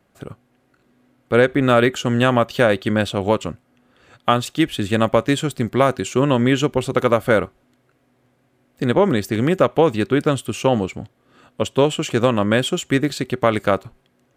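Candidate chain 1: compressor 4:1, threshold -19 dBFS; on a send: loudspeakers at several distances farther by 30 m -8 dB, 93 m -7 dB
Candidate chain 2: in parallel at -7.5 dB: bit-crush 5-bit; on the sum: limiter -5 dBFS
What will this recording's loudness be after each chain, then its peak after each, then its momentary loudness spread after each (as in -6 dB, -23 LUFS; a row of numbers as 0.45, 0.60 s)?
-23.5, -18.0 LUFS; -5.5, -5.0 dBFS; 11, 7 LU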